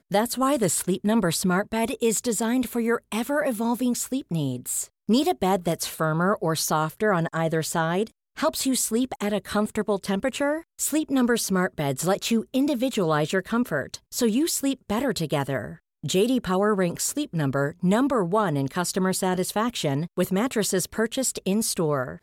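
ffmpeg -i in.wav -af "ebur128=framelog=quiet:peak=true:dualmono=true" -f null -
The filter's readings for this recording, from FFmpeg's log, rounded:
Integrated loudness:
  I:         -21.6 LUFS
  Threshold: -31.7 LUFS
Loudness range:
  LRA:         1.5 LU
  Threshold: -41.8 LUFS
  LRA low:   -22.5 LUFS
  LRA high:  -21.0 LUFS
True peak:
  Peak:      -10.7 dBFS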